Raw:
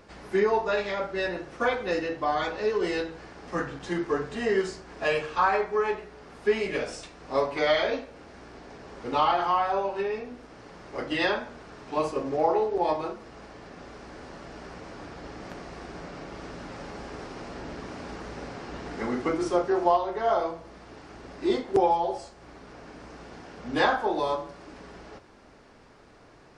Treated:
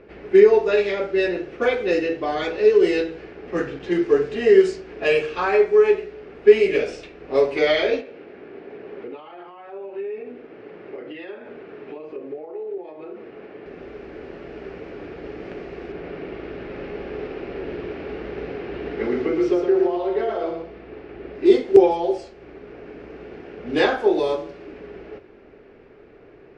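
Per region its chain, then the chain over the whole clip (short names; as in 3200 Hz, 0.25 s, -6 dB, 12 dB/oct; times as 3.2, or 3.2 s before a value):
8.01–13.66 BPF 150–4100 Hz + compressor 16:1, threshold -38 dBFS
15.92–21.35 LPF 4300 Hz + compressor 5:1, threshold -26 dBFS + echo 0.115 s -5.5 dB
whole clip: low-pass opened by the level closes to 2000 Hz, open at -22 dBFS; fifteen-band EQ 400 Hz +12 dB, 1000 Hz -7 dB, 2500 Hz +7 dB; gain +1.5 dB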